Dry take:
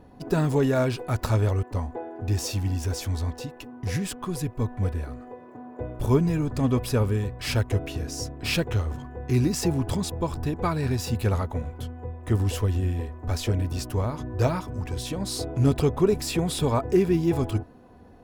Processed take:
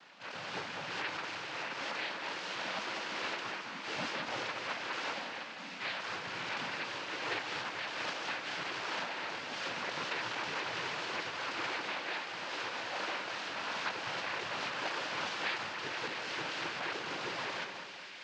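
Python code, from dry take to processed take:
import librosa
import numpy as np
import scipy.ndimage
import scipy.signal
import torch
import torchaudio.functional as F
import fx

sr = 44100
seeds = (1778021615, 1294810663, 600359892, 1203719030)

y = fx.envelope_flatten(x, sr, power=0.1)
y = fx.highpass(y, sr, hz=730.0, slope=6)
y = fx.over_compress(y, sr, threshold_db=-29.0, ratio=-1.0)
y = fx.transient(y, sr, attack_db=-7, sustain_db=10)
y = fx.noise_vocoder(y, sr, seeds[0], bands=8)
y = fx.air_absorb(y, sr, metres=280.0)
y = fx.echo_split(y, sr, split_hz=1900.0, low_ms=200, high_ms=655, feedback_pct=52, wet_db=-8.0)
y = F.gain(torch.from_numpy(y), -1.0).numpy()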